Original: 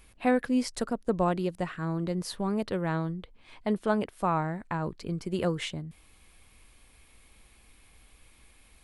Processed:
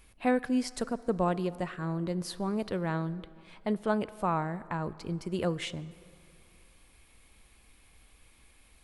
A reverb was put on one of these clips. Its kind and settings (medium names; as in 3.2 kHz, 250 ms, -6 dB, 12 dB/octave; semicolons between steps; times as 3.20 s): plate-style reverb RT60 2.7 s, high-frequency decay 0.6×, DRR 17 dB; trim -2 dB